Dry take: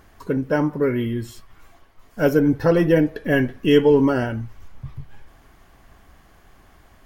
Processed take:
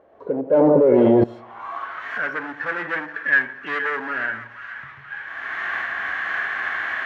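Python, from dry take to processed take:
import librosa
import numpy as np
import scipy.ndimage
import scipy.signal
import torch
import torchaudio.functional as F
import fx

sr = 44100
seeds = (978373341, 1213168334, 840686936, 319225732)

y = fx.recorder_agc(x, sr, target_db=-13.0, rise_db_per_s=29.0, max_gain_db=30)
y = fx.highpass(y, sr, hz=82.0, slope=6)
y = fx.high_shelf_res(y, sr, hz=6300.0, db=-9.0, q=1.5)
y = fx.hpss(y, sr, part='harmonic', gain_db=9)
y = fx.peak_eq(y, sr, hz=4900.0, db=-10.0, octaves=0.34)
y = np.clip(10.0 ** (10.0 / 20.0) * y, -1.0, 1.0) / 10.0 ** (10.0 / 20.0)
y = fx.filter_sweep_bandpass(y, sr, from_hz=540.0, to_hz=1700.0, start_s=1.17, end_s=2.07, q=4.7)
y = fx.echo_split(y, sr, split_hz=1000.0, low_ms=86, high_ms=476, feedback_pct=52, wet_db=-11.5)
y = fx.env_flatten(y, sr, amount_pct=100, at=(0.53, 1.24))
y = y * librosa.db_to_amplitude(4.5)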